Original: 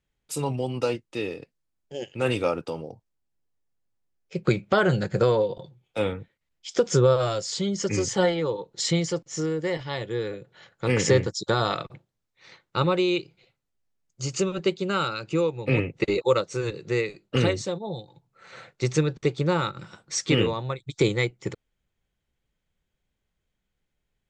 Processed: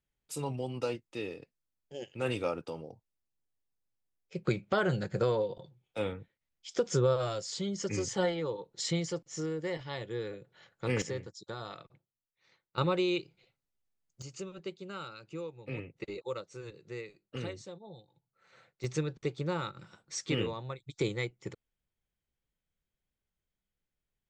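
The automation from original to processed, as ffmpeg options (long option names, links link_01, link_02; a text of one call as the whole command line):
ffmpeg -i in.wav -af "asetnsamples=nb_out_samples=441:pad=0,asendcmd='11.02 volume volume -18dB;12.78 volume volume -6.5dB;14.22 volume volume -16.5dB;18.84 volume volume -10dB',volume=-8dB" out.wav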